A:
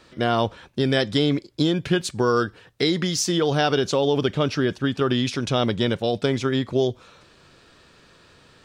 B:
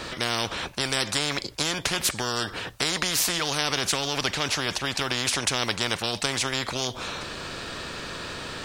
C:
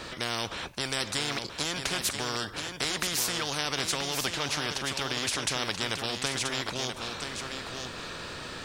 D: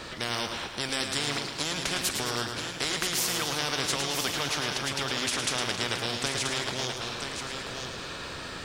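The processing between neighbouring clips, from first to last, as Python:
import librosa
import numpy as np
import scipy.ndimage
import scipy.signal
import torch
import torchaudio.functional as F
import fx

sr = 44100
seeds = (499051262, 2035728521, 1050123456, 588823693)

y1 = fx.spectral_comp(x, sr, ratio=4.0)
y2 = y1 + 10.0 ** (-6.5 / 20.0) * np.pad(y1, (int(981 * sr / 1000.0), 0))[:len(y1)]
y2 = F.gain(torch.from_numpy(y2), -5.0).numpy()
y3 = fx.echo_feedback(y2, sr, ms=109, feedback_pct=55, wet_db=-6.5)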